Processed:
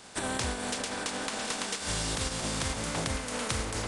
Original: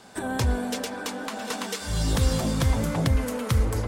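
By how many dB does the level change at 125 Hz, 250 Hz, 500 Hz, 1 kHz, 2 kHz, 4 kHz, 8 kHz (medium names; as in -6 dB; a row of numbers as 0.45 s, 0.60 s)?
-12.5 dB, -8.5 dB, -5.5 dB, -2.5 dB, -0.5 dB, +0.5 dB, +2.0 dB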